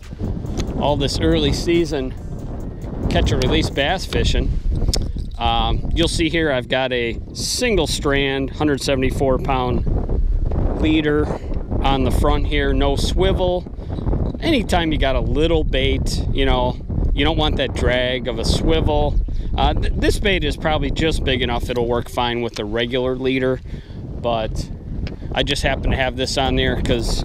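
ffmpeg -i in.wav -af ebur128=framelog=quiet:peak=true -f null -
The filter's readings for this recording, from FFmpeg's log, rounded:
Integrated loudness:
  I:         -19.9 LUFS
  Threshold: -30.0 LUFS
Loudness range:
  LRA:         2.3 LU
  Threshold: -40.0 LUFS
  LRA low:   -21.5 LUFS
  LRA high:  -19.2 LUFS
True peak:
  Peak:       -3.8 dBFS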